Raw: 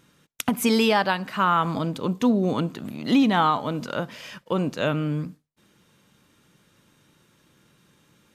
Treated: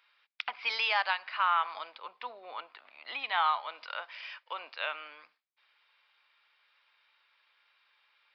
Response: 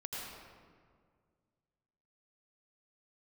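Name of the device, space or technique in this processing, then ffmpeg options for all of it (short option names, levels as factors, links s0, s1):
musical greeting card: -filter_complex "[0:a]asettb=1/sr,asplit=3[s0][s1][s2];[s0]atrim=end=1.954[s3];[s1]atrim=start=1.95:end=3.24,asetpts=PTS-STARTPTS,afade=t=in:d=0.004:c=qsin,afade=t=out:st=1.286:d=0.004:c=qsin,highshelf=f=2700:g=-9.5[s4];[s2]atrim=start=3.236[s5];[s3][s4]acrossfade=d=0.004:c1=hsin:c2=qsin[s6];[s6][s5]acrossfade=d=0.004:c1=qsin:c2=hsin,aresample=11025,aresample=44100,highpass=f=800:w=0.5412,highpass=f=800:w=1.3066,equalizer=f=2300:t=o:w=0.49:g=7,volume=0.501"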